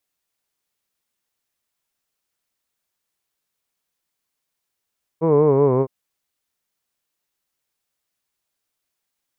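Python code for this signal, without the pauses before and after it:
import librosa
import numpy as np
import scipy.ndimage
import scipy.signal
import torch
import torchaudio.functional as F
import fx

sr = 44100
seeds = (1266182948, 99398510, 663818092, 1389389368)

y = fx.vowel(sr, seeds[0], length_s=0.66, word='hood', hz=159.0, glide_st=-4.0, vibrato_hz=5.3, vibrato_st=0.9)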